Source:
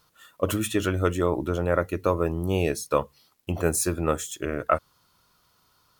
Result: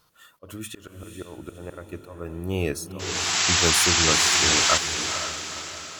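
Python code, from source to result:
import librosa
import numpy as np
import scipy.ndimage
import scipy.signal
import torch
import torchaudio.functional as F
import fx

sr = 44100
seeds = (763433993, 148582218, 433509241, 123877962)

p1 = fx.spec_paint(x, sr, seeds[0], shape='noise', start_s=2.99, length_s=1.79, low_hz=630.0, high_hz=7800.0, level_db=-21.0)
p2 = fx.auto_swell(p1, sr, attack_ms=582.0)
p3 = fx.dynamic_eq(p2, sr, hz=600.0, q=1.9, threshold_db=-38.0, ratio=4.0, max_db=-5)
y = p3 + fx.echo_diffused(p3, sr, ms=487, feedback_pct=47, wet_db=-8, dry=0)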